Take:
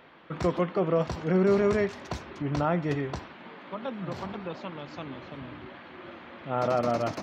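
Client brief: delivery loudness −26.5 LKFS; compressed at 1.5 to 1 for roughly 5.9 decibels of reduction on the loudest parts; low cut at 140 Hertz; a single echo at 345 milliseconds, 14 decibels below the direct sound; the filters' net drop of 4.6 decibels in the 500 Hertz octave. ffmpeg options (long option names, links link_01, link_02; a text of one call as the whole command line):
ffmpeg -i in.wav -af "highpass=140,equalizer=frequency=500:width_type=o:gain=-6,acompressor=threshold=-38dB:ratio=1.5,aecho=1:1:345:0.2,volume=11dB" out.wav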